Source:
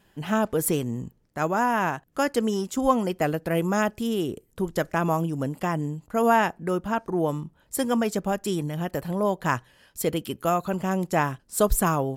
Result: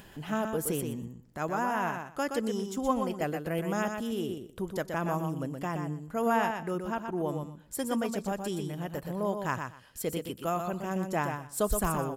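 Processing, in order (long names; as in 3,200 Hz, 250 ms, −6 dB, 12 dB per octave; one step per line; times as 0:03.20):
upward compression, threshold −31 dBFS
repeating echo 122 ms, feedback 17%, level −6 dB
level −7.5 dB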